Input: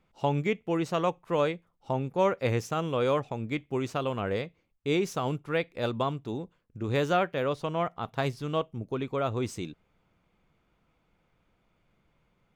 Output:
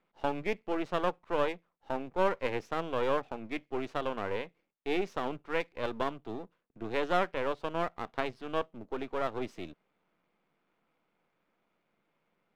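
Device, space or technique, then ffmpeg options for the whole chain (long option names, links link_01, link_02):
crystal radio: -af "highpass=frequency=130:width=0.5412,highpass=frequency=130:width=1.3066,highpass=220,lowpass=3000,aeval=exprs='if(lt(val(0),0),0.251*val(0),val(0))':channel_layout=same"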